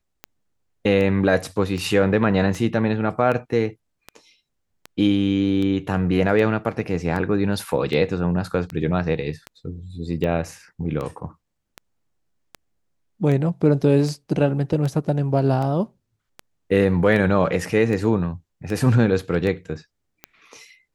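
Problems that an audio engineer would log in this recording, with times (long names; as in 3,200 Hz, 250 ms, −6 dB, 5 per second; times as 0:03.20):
scratch tick 78 rpm −17 dBFS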